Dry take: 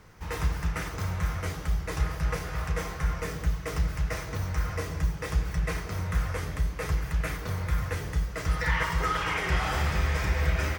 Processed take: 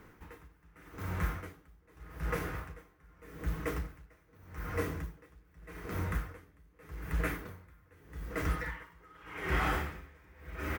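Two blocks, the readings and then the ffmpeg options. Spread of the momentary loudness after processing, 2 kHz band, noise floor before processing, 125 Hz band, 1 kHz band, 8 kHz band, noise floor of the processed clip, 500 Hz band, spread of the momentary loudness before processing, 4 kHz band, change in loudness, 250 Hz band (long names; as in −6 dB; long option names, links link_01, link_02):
19 LU, −8.0 dB, −38 dBFS, −11.0 dB, −8.0 dB, −13.0 dB, −65 dBFS, −6.0 dB, 5 LU, −12.5 dB, −7.5 dB, −5.5 dB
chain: -filter_complex "[0:a]firequalizer=gain_entry='entry(140,0);entry(280,11);entry(590,1);entry(1500,5);entry(4900,-6);entry(14000,6)':delay=0.05:min_phase=1,asplit=2[link_01][link_02];[link_02]adelay=1516,volume=-10dB,highshelf=frequency=4000:gain=-34.1[link_03];[link_01][link_03]amix=inputs=2:normalize=0,acrusher=bits=7:mode=log:mix=0:aa=0.000001,aeval=exprs='val(0)*pow(10,-30*(0.5-0.5*cos(2*PI*0.83*n/s))/20)':channel_layout=same,volume=-4.5dB"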